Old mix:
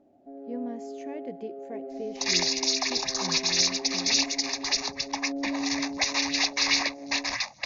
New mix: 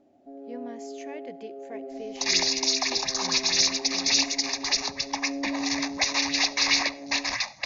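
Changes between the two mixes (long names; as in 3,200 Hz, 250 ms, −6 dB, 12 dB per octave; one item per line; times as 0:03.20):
speech: add tilt shelving filter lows −7 dB, about 720 Hz
second sound: send on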